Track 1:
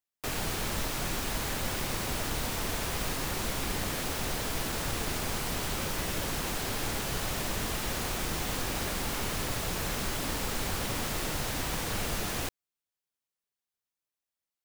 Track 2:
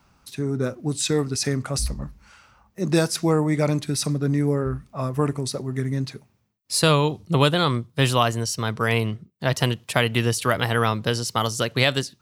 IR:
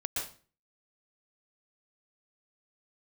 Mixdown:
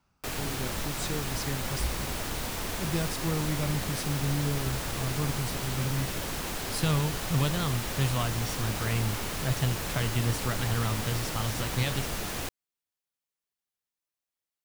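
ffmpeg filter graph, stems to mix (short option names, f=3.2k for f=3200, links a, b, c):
-filter_complex "[0:a]volume=-1dB[a];[1:a]asubboost=boost=4:cutoff=190,volume=-13dB[b];[a][b]amix=inputs=2:normalize=0"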